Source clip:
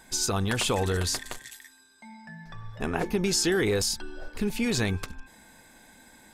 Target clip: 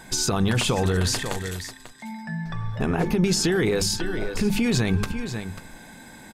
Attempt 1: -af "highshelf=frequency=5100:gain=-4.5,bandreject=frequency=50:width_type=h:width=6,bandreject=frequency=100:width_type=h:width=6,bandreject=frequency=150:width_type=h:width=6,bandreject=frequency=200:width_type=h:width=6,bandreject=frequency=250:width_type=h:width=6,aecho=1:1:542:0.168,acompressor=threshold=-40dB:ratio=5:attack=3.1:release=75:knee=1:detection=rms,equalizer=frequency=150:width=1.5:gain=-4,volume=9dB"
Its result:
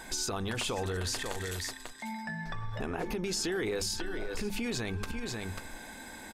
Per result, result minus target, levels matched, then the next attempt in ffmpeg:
downward compressor: peak gain reduction +9 dB; 125 Hz band −3.0 dB
-af "highshelf=frequency=5100:gain=-4.5,bandreject=frequency=50:width_type=h:width=6,bandreject=frequency=100:width_type=h:width=6,bandreject=frequency=150:width_type=h:width=6,bandreject=frequency=200:width_type=h:width=6,bandreject=frequency=250:width_type=h:width=6,aecho=1:1:542:0.168,acompressor=threshold=-29dB:ratio=5:attack=3.1:release=75:knee=1:detection=rms,equalizer=frequency=150:width=1.5:gain=-4,volume=9dB"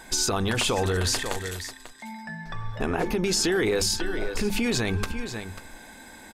125 Hz band −4.5 dB
-af "highshelf=frequency=5100:gain=-4.5,bandreject=frequency=50:width_type=h:width=6,bandreject=frequency=100:width_type=h:width=6,bandreject=frequency=150:width_type=h:width=6,bandreject=frequency=200:width_type=h:width=6,bandreject=frequency=250:width_type=h:width=6,aecho=1:1:542:0.168,acompressor=threshold=-29dB:ratio=5:attack=3.1:release=75:knee=1:detection=rms,equalizer=frequency=150:width=1.5:gain=7.5,volume=9dB"

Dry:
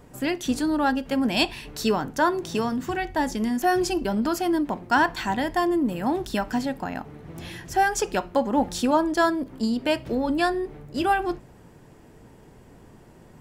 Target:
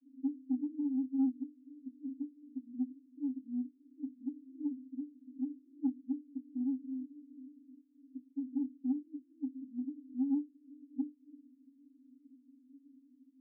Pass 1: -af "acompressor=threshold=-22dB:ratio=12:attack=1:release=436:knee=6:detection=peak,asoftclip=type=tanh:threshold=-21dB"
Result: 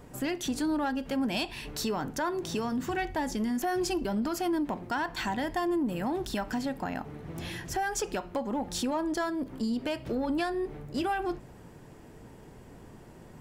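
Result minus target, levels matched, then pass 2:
250 Hz band −3.0 dB
-af "acompressor=threshold=-22dB:ratio=12:attack=1:release=436:knee=6:detection=peak,asuperpass=centerf=270:order=12:qfactor=5.3,asoftclip=type=tanh:threshold=-21dB"

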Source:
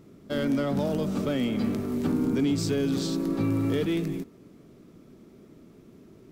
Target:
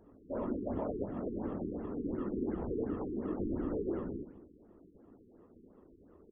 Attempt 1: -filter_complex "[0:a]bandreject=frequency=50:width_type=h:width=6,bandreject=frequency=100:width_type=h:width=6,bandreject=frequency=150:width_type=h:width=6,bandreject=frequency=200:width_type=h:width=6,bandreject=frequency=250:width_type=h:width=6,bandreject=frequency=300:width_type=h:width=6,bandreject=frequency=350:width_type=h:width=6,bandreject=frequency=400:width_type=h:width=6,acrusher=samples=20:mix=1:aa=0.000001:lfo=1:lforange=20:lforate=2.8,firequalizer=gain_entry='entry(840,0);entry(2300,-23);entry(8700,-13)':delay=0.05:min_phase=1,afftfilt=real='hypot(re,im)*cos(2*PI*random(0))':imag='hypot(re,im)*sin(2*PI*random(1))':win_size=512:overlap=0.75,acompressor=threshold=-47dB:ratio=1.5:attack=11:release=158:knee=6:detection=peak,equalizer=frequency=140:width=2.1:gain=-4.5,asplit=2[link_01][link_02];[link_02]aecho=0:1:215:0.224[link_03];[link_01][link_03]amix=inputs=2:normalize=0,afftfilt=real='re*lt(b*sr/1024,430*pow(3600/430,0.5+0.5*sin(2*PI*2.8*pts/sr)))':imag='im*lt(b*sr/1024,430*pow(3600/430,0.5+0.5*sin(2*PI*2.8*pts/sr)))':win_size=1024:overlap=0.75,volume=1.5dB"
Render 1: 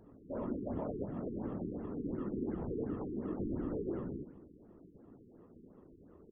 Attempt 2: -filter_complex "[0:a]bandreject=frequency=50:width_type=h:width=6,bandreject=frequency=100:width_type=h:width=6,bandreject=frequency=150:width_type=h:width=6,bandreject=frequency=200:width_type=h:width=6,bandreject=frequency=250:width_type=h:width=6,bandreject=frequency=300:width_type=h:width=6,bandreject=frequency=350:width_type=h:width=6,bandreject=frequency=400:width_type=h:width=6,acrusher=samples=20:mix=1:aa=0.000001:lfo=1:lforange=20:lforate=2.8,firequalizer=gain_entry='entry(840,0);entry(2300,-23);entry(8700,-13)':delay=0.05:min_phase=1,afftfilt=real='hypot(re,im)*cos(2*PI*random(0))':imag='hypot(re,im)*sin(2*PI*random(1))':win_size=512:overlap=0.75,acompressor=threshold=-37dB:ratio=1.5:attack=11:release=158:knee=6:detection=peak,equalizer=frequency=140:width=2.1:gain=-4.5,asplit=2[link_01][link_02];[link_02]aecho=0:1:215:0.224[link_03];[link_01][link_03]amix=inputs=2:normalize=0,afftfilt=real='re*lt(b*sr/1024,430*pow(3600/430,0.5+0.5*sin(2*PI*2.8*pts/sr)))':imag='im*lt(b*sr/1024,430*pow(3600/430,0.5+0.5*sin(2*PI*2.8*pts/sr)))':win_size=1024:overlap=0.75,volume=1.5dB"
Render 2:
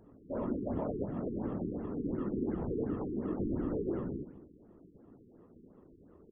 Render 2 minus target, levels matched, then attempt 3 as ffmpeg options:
125 Hz band +3.0 dB
-filter_complex "[0:a]bandreject=frequency=50:width_type=h:width=6,bandreject=frequency=100:width_type=h:width=6,bandreject=frequency=150:width_type=h:width=6,bandreject=frequency=200:width_type=h:width=6,bandreject=frequency=250:width_type=h:width=6,bandreject=frequency=300:width_type=h:width=6,bandreject=frequency=350:width_type=h:width=6,bandreject=frequency=400:width_type=h:width=6,acrusher=samples=20:mix=1:aa=0.000001:lfo=1:lforange=20:lforate=2.8,firequalizer=gain_entry='entry(840,0);entry(2300,-23);entry(8700,-13)':delay=0.05:min_phase=1,afftfilt=real='hypot(re,im)*cos(2*PI*random(0))':imag='hypot(re,im)*sin(2*PI*random(1))':win_size=512:overlap=0.75,acompressor=threshold=-37dB:ratio=1.5:attack=11:release=158:knee=6:detection=peak,equalizer=frequency=140:width=2.1:gain=-13,asplit=2[link_01][link_02];[link_02]aecho=0:1:215:0.224[link_03];[link_01][link_03]amix=inputs=2:normalize=0,afftfilt=real='re*lt(b*sr/1024,430*pow(3600/430,0.5+0.5*sin(2*PI*2.8*pts/sr)))':imag='im*lt(b*sr/1024,430*pow(3600/430,0.5+0.5*sin(2*PI*2.8*pts/sr)))':win_size=1024:overlap=0.75,volume=1.5dB"

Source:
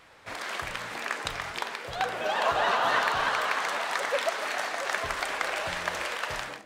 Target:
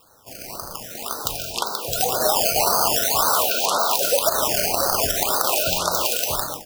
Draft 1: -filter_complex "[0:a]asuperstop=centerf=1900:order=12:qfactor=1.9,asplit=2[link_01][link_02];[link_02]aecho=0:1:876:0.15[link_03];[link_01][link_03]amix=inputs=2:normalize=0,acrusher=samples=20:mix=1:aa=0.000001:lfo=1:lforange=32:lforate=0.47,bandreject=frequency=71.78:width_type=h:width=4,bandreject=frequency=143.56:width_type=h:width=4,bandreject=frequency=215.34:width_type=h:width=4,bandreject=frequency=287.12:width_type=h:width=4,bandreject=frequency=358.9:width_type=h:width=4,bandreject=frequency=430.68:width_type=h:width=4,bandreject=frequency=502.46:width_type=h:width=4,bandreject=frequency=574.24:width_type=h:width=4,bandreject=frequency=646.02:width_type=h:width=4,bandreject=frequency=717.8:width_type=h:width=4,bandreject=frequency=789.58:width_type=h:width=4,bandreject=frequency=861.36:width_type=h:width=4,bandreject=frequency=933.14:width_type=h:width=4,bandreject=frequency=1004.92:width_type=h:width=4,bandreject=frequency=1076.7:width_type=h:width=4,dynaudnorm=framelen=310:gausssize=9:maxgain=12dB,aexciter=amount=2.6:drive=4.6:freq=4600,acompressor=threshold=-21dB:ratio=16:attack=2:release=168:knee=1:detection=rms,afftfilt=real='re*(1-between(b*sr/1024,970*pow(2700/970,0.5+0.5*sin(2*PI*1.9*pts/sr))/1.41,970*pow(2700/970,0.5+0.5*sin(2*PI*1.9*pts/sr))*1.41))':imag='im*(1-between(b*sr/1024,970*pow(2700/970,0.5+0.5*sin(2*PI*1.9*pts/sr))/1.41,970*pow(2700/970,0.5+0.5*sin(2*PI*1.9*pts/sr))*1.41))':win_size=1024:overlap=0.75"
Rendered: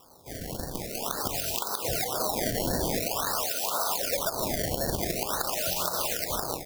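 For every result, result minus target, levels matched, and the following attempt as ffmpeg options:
sample-and-hold swept by an LFO: distortion +13 dB; downward compressor: peak gain reduction +8.5 dB
-filter_complex "[0:a]asuperstop=centerf=1900:order=12:qfactor=1.9,asplit=2[link_01][link_02];[link_02]aecho=0:1:876:0.15[link_03];[link_01][link_03]amix=inputs=2:normalize=0,acrusher=samples=7:mix=1:aa=0.000001:lfo=1:lforange=11.2:lforate=0.47,bandreject=frequency=71.78:width_type=h:width=4,bandreject=frequency=143.56:width_type=h:width=4,bandreject=frequency=215.34:width_type=h:width=4,bandreject=frequency=287.12:width_type=h:width=4,bandreject=frequency=358.9:width_type=h:width=4,bandreject=frequency=430.68:width_type=h:width=4,bandreject=frequency=502.46:width_type=h:width=4,bandreject=frequency=574.24:width_type=h:width=4,bandreject=frequency=646.02:width_type=h:width=4,bandreject=frequency=717.8:width_type=h:width=4,bandreject=frequency=789.58:width_type=h:width=4,bandreject=frequency=861.36:width_type=h:width=4,bandreject=frequency=933.14:width_type=h:width=4,bandreject=frequency=1004.92:width_type=h:width=4,bandreject=frequency=1076.7:width_type=h:width=4,dynaudnorm=framelen=310:gausssize=9:maxgain=12dB,aexciter=amount=2.6:drive=4.6:freq=4600,acompressor=threshold=-21dB:ratio=16:attack=2:release=168:knee=1:detection=rms,afftfilt=real='re*(1-between(b*sr/1024,970*pow(2700/970,0.5+0.5*sin(2*PI*1.9*pts/sr))/1.41,970*pow(2700/970,0.5+0.5*sin(2*PI*1.9*pts/sr))*1.41))':imag='im*(1-between(b*sr/1024,970*pow(2700/970,0.5+0.5*sin(2*PI*1.9*pts/sr))/1.41,970*pow(2700/970,0.5+0.5*sin(2*PI*1.9*pts/sr))*1.41))':win_size=1024:overlap=0.75"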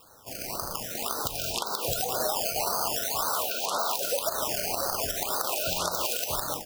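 downward compressor: peak gain reduction +9.5 dB
-filter_complex "[0:a]asuperstop=centerf=1900:order=12:qfactor=1.9,asplit=2[link_01][link_02];[link_02]aecho=0:1:876:0.15[link_03];[link_01][link_03]amix=inputs=2:normalize=0,acrusher=samples=7:mix=1:aa=0.000001:lfo=1:lforange=11.2:lforate=0.47,bandreject=frequency=71.78:width_type=h:width=4,bandreject=frequency=143.56:width_type=h:width=4,bandreject=frequency=215.34:width_type=h:width=4,bandreject=frequency=287.12:width_type=h:width=4,bandreject=frequency=358.9:width_type=h:width=4,bandreject=frequency=430.68:width_type=h:width=4,bandreject=frequency=502.46:width_type=h:width=4,bandreject=frequency=574.24:width_type=h:width=4,bandreject=frequency=646.02:width_type=h:width=4,bandreject=frequency=717.8:width_type=h:width=4,bandreject=frequency=789.58:width_type=h:width=4,bandreject=frequency=861.36:width_type=h:width=4,bandreject=frequency=933.14:width_type=h:width=4,bandreject=frequency=1004.92:width_type=h:width=4,bandreject=frequency=1076.7:width_type=h:width=4,dynaudnorm=framelen=310:gausssize=9:maxgain=12dB,aexciter=amount=2.6:drive=4.6:freq=4600,acompressor=threshold=-11dB:ratio=16:attack=2:release=168:knee=1:detection=rms,afftfilt=real='re*(1-between(b*sr/1024,970*pow(2700/970,0.5+0.5*sin(2*PI*1.9*pts/sr))/1.41,970*pow(2700/970,0.5+0.5*sin(2*PI*1.9*pts/sr))*1.41))':imag='im*(1-between(b*sr/1024,970*pow(2700/970,0.5+0.5*sin(2*PI*1.9*pts/sr))/1.41,970*pow(2700/970,0.5+0.5*sin(2*PI*1.9*pts/sr))*1.41))':win_size=1024:overlap=0.75"

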